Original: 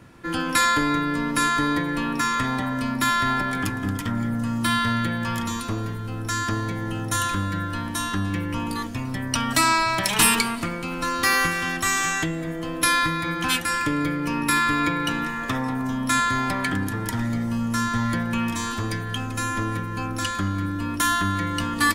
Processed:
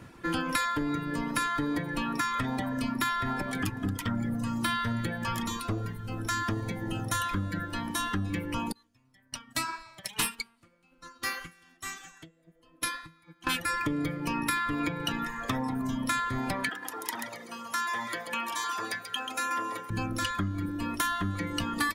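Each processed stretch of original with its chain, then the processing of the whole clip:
8.72–13.47 bell 7300 Hz +5 dB 2.9 oct + flange 1.8 Hz, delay 3.5 ms, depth 5.4 ms, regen +77% + upward expander 2.5:1, over -31 dBFS
16.69–19.9 HPF 530 Hz + notch 8000 Hz, Q 26 + feedback echo 0.135 s, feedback 29%, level -5.5 dB
whole clip: reverb removal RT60 1.4 s; dynamic EQ 7700 Hz, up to -5 dB, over -43 dBFS, Q 0.92; compressor 6:1, threshold -26 dBFS

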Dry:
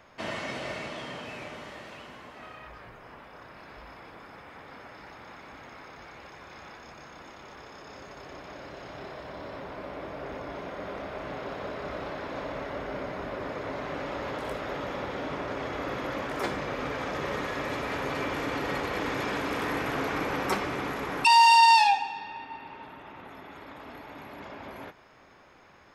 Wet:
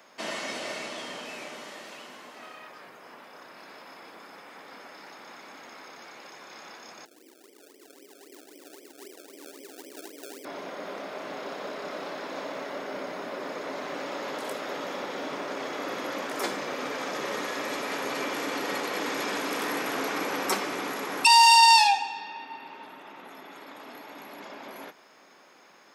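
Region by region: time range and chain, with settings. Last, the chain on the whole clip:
7.05–10.45 Butterworth band-pass 350 Hz, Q 1.9 + decimation with a swept rate 31× 3.8 Hz
whole clip: HPF 190 Hz 24 dB/oct; tone controls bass -2 dB, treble +10 dB

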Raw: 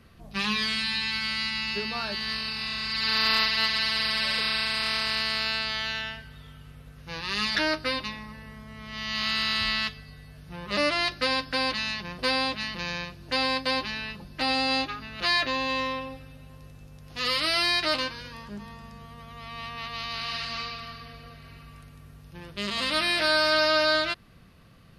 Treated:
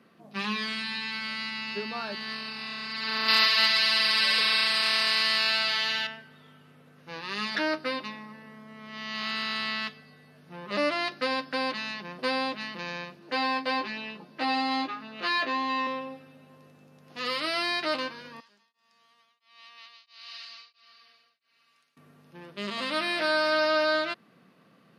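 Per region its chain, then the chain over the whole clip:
3.28–6.07 high shelf 2200 Hz +11.5 dB + feedback echo 0.139 s, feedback 54%, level -8 dB
13.19–15.87 HPF 170 Hz + high shelf 6900 Hz -6.5 dB + doubler 18 ms -3.5 dB
18.4–21.97 band-pass 5200 Hz, Q 1.1 + beating tremolo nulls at 1.5 Hz
whole clip: HPF 190 Hz 24 dB/oct; high shelf 2700 Hz -9.5 dB

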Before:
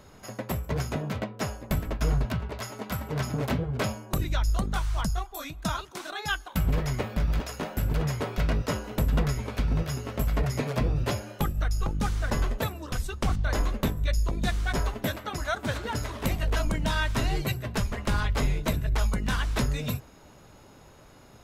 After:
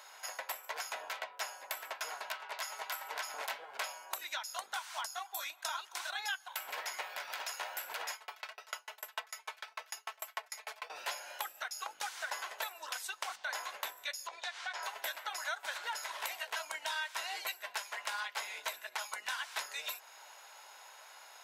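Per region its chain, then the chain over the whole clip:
8.13–10.9 HPF 480 Hz + comb 4.6 ms, depth 81% + dB-ramp tremolo decaying 6.7 Hz, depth 38 dB
14.27–14.83 BPF 450–5200 Hz + compressor 3:1, threshold -36 dBFS
whole clip: HPF 810 Hz 24 dB/oct; notch 1200 Hz, Q 7.5; compressor 3:1, threshold -43 dBFS; gain +4.5 dB

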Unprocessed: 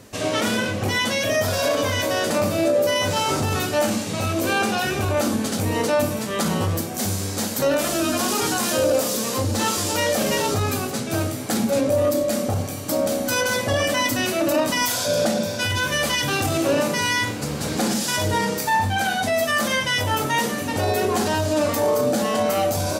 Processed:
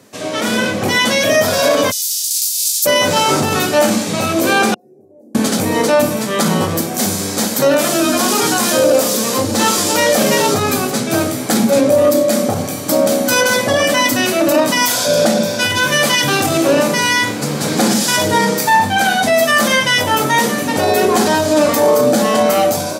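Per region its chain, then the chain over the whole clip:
1.9–2.85 spectral contrast lowered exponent 0.51 + inverse Chebyshev high-pass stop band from 810 Hz, stop band 80 dB
4.74–5.35 inverse Chebyshev low-pass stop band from 1200 Hz, stop band 50 dB + differentiator
whole clip: HPF 130 Hz 24 dB/oct; notch 2800 Hz, Q 26; AGC gain up to 11 dB

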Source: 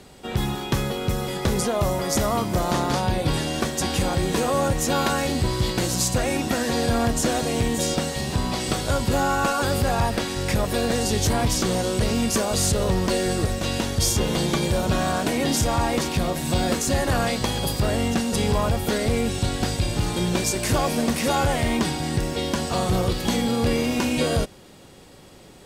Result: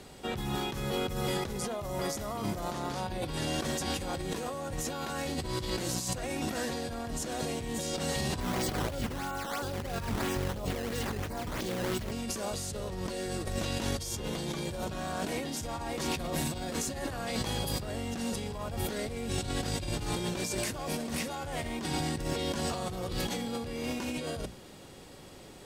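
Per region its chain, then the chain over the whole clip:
8.4–12.12 LFO notch saw down 1.1 Hz 440–5500 Hz + decimation with a swept rate 11×, swing 160% 3 Hz
whole clip: notches 60/120/180/240 Hz; negative-ratio compressor -28 dBFS, ratio -1; gain -6.5 dB

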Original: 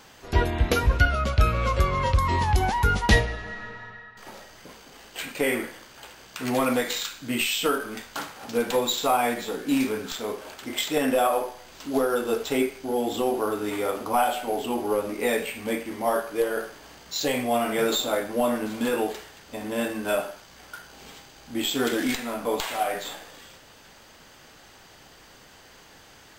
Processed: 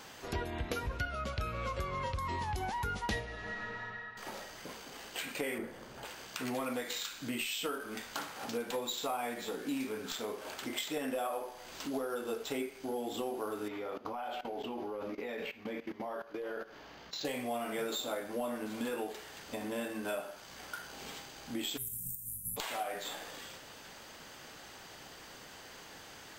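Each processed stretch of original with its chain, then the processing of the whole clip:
5.58–6.05 tilt shelf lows +7.5 dB, about 880 Hz + notch 300 Hz, Q 5.5
13.68–17.25 level quantiser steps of 17 dB + running mean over 5 samples
21.76–22.56 spectral limiter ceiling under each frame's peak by 29 dB + inverse Chebyshev band-stop 400–4500 Hz, stop band 50 dB + de-hum 201.7 Hz, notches 21
whole clip: low shelf 85 Hz -8 dB; compressor 3:1, threshold -38 dBFS

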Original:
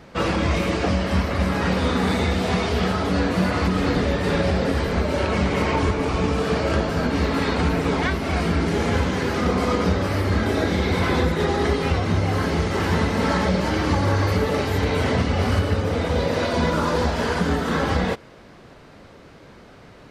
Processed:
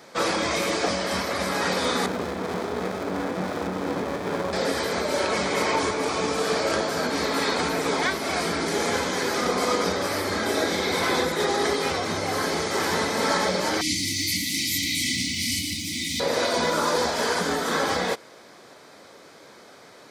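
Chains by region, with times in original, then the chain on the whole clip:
2.06–4.53 LPF 1700 Hz + running maximum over 33 samples
13.81–16.2 brick-wall FIR band-stop 340–1900 Hz + high shelf 3200 Hz +7.5 dB + lo-fi delay 0.158 s, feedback 35%, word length 7-bit, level -14 dB
whole clip: HPF 110 Hz 12 dB/oct; tone controls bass -13 dB, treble +9 dB; notch 2800 Hz, Q 8.2

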